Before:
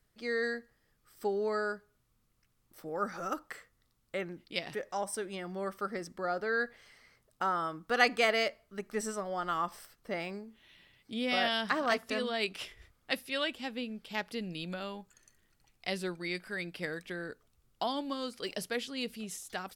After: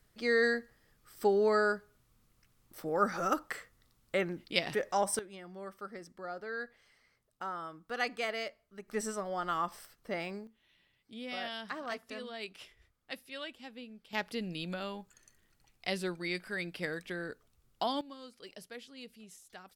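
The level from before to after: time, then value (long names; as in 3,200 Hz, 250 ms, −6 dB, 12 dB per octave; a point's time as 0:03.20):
+5 dB
from 0:05.19 −8 dB
from 0:08.88 −0.5 dB
from 0:10.47 −9.5 dB
from 0:14.13 +0.5 dB
from 0:18.01 −12 dB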